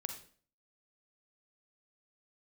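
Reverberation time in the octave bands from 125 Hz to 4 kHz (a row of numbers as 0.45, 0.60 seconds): 0.50, 0.55, 0.50, 0.45, 0.45, 0.40 seconds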